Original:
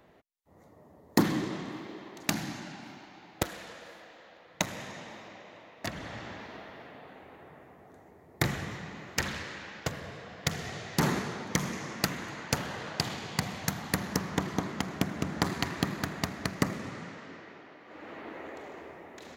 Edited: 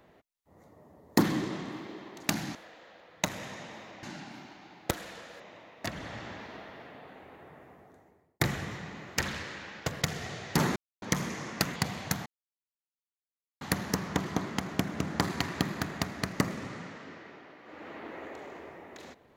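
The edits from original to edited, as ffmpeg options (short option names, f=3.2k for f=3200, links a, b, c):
-filter_complex "[0:a]asplit=10[a][b][c][d][e][f][g][h][i][j];[a]atrim=end=2.552[k];[b]atrim=start=3.918:end=5.402[l];[c]atrim=start=2.548:end=3.922[m];[d]atrim=start=5.398:end=8.4,asetpts=PTS-STARTPTS,afade=t=out:st=2.332:d=0.67[n];[e]atrim=start=8.4:end=10.022,asetpts=PTS-STARTPTS,afade=t=in:d=0.004:c=hsin[o];[f]atrim=start=10.448:end=11.19,asetpts=PTS-STARTPTS,afade=t=out:st=0.738:d=0.004:c=hsin[p];[g]atrim=start=11.19:end=11.45,asetpts=PTS-STARTPTS,volume=0[q];[h]atrim=start=11.45:end=12.192,asetpts=PTS-STARTPTS,afade=t=in:d=0.004:c=hsin[r];[i]atrim=start=13.328:end=13.83,asetpts=PTS-STARTPTS,afade=t=out:st=0.498:d=0.004:c=hsin,apad=pad_dur=1.35[s];[j]atrim=start=13.83,asetpts=PTS-STARTPTS,afade=t=in:d=0.004:c=hsin[t];[k][l]acrossfade=d=0.004:c1=hsin:c2=hsin[u];[u][m]acrossfade=d=0.004:c1=hsin:c2=hsin[v];[n][o]concat=n=2:v=0:a=1[w];[v][w]acrossfade=d=0.004:c1=hsin:c2=hsin[x];[p][q][r]concat=n=3:v=0:a=1[y];[x][y]acrossfade=d=0.004:c1=hsin:c2=hsin[z];[s][t]concat=n=2:v=0:a=1[aa];[z][aa]acrossfade=d=0.004:c1=hsin:c2=hsin"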